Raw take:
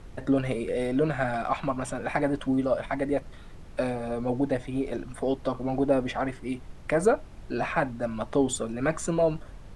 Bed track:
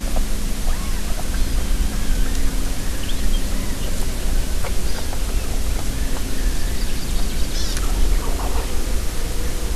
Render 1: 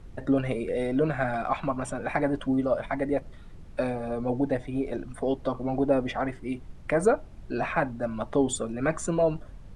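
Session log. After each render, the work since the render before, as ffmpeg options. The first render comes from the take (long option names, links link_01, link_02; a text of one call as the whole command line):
ffmpeg -i in.wav -af "afftdn=noise_reduction=6:noise_floor=-45" out.wav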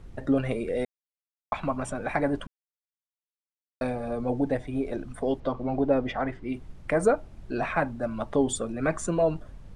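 ffmpeg -i in.wav -filter_complex "[0:a]asettb=1/sr,asplit=3[link_01][link_02][link_03];[link_01]atrim=end=5.404[link_04];[link_02]atrim=start=5.4:end=6.54,asetpts=PTS-STARTPTS,afade=type=in:duration=0.004:curve=qsin,afade=type=out:start_time=1.136:duration=0.004:curve=qsin,lowpass=4800[link_05];[link_03]atrim=start=6.536[link_06];[link_04][link_05]acrossfade=duration=0.004:curve1=hsin:curve2=qsin[link_07];[link_07][link_06]acrossfade=duration=0.004:curve1=qsin:curve2=hsin,asplit=5[link_08][link_09][link_10][link_11][link_12];[link_08]atrim=end=0.85,asetpts=PTS-STARTPTS,afade=type=out:start_time=0.846:duration=0.004:curve=hsin[link_13];[link_09]atrim=start=0.85:end=1.52,asetpts=PTS-STARTPTS,volume=0[link_14];[link_10]atrim=start=1.52:end=2.47,asetpts=PTS-STARTPTS,afade=type=in:duration=0.004:curve=hsin,afade=type=out:start_time=0.946:duration=0.004:curve=hsin[link_15];[link_11]atrim=start=2.47:end=3.81,asetpts=PTS-STARTPTS,volume=0[link_16];[link_12]atrim=start=3.81,asetpts=PTS-STARTPTS,afade=type=in:duration=0.004:curve=hsin[link_17];[link_13][link_14][link_15][link_16][link_17]concat=n=5:v=0:a=1" out.wav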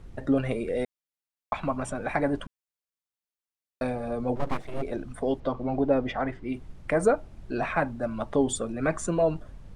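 ffmpeg -i in.wav -filter_complex "[0:a]asplit=3[link_01][link_02][link_03];[link_01]afade=type=out:start_time=4.35:duration=0.02[link_04];[link_02]aeval=exprs='abs(val(0))':channel_layout=same,afade=type=in:start_time=4.35:duration=0.02,afade=type=out:start_time=4.81:duration=0.02[link_05];[link_03]afade=type=in:start_time=4.81:duration=0.02[link_06];[link_04][link_05][link_06]amix=inputs=3:normalize=0" out.wav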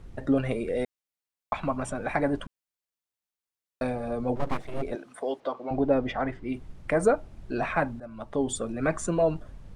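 ffmpeg -i in.wav -filter_complex "[0:a]asettb=1/sr,asplit=3[link_01][link_02][link_03];[link_01]atrim=end=4.954[link_04];[link_02]atrim=start=4.95:end=5.71,asetpts=PTS-STARTPTS,afade=type=in:duration=0.004:curve=qsin,afade=type=out:start_time=0.756:duration=0.004:curve=qsin,highpass=430[link_05];[link_03]atrim=start=5.706[link_06];[link_04][link_05]acrossfade=duration=0.004:curve1=hsin:curve2=qsin[link_07];[link_07][link_06]acrossfade=duration=0.004:curve1=qsin:curve2=hsin,asplit=2[link_08][link_09];[link_08]atrim=end=8,asetpts=PTS-STARTPTS,afade=type=out:start_time=7.996:duration=0.004:curve=hsin:silence=0.188365[link_10];[link_09]atrim=start=8,asetpts=PTS-STARTPTS,afade=type=in:duration=0.69:silence=0.188365[link_11];[link_10][link_11]concat=n=2:v=0:a=1" out.wav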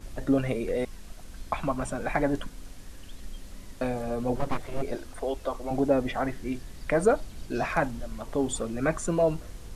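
ffmpeg -i in.wav -i bed.wav -filter_complex "[1:a]volume=-21.5dB[link_01];[0:a][link_01]amix=inputs=2:normalize=0" out.wav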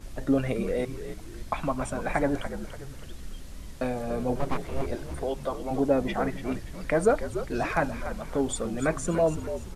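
ffmpeg -i in.wav -filter_complex "[0:a]asplit=6[link_01][link_02][link_03][link_04][link_05][link_06];[link_02]adelay=289,afreqshift=-74,volume=-10.5dB[link_07];[link_03]adelay=578,afreqshift=-148,volume=-17.8dB[link_08];[link_04]adelay=867,afreqshift=-222,volume=-25.2dB[link_09];[link_05]adelay=1156,afreqshift=-296,volume=-32.5dB[link_10];[link_06]adelay=1445,afreqshift=-370,volume=-39.8dB[link_11];[link_01][link_07][link_08][link_09][link_10][link_11]amix=inputs=6:normalize=0" out.wav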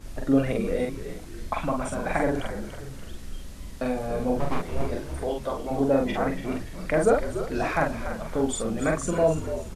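ffmpeg -i in.wav -filter_complex "[0:a]asplit=2[link_01][link_02];[link_02]adelay=44,volume=-2.5dB[link_03];[link_01][link_03]amix=inputs=2:normalize=0,aecho=1:1:351:0.0668" out.wav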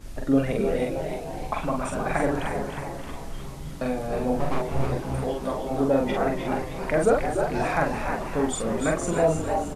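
ffmpeg -i in.wav -filter_complex "[0:a]asplit=7[link_01][link_02][link_03][link_04][link_05][link_06][link_07];[link_02]adelay=311,afreqshift=130,volume=-7dB[link_08];[link_03]adelay=622,afreqshift=260,volume=-13.6dB[link_09];[link_04]adelay=933,afreqshift=390,volume=-20.1dB[link_10];[link_05]adelay=1244,afreqshift=520,volume=-26.7dB[link_11];[link_06]adelay=1555,afreqshift=650,volume=-33.2dB[link_12];[link_07]adelay=1866,afreqshift=780,volume=-39.8dB[link_13];[link_01][link_08][link_09][link_10][link_11][link_12][link_13]amix=inputs=7:normalize=0" out.wav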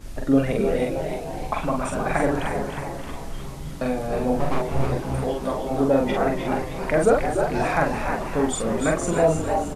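ffmpeg -i in.wav -af "volume=2.5dB" out.wav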